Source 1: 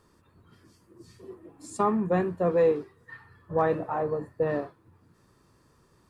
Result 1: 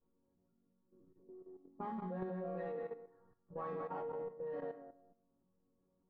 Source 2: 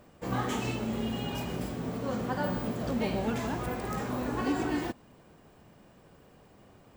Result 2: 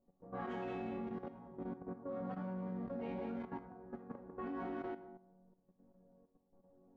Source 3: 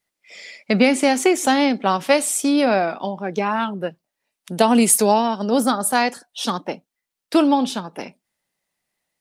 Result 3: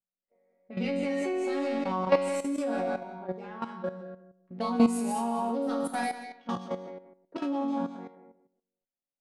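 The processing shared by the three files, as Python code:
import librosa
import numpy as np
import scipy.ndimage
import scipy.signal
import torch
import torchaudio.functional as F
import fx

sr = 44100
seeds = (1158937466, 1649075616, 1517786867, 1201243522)

p1 = fx.wiener(x, sr, points=15)
p2 = fx.resonator_bank(p1, sr, root=54, chord='major', decay_s=0.72)
p3 = fx.rider(p2, sr, range_db=4, speed_s=2.0)
p4 = p2 + F.gain(torch.from_numpy(p3), 0.0).numpy()
p5 = fx.high_shelf(p4, sr, hz=4300.0, db=-7.5)
p6 = p5 + fx.echo_feedback(p5, sr, ms=183, feedback_pct=20, wet_db=-6, dry=0)
p7 = fx.level_steps(p6, sr, step_db=12)
p8 = scipy.signal.sosfilt(scipy.signal.butter(2, 10000.0, 'lowpass', fs=sr, output='sos'), p7)
p9 = fx.env_lowpass(p8, sr, base_hz=610.0, full_db=-38.0)
y = F.gain(torch.from_numpy(p9), 6.5).numpy()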